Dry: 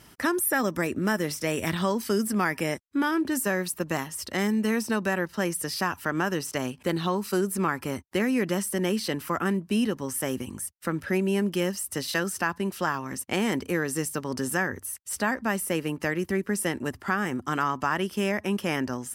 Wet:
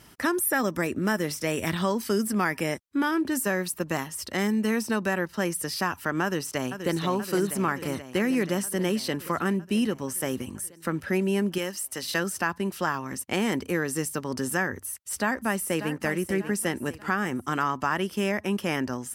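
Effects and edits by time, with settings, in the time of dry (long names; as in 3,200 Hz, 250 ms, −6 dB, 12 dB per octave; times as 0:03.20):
0:06.23–0:07.02: delay throw 480 ms, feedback 75%, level −8.5 dB
0:11.58–0:12.03: low-shelf EQ 390 Hz −10.5 dB
0:14.77–0:15.92: delay throw 590 ms, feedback 40%, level −10.5 dB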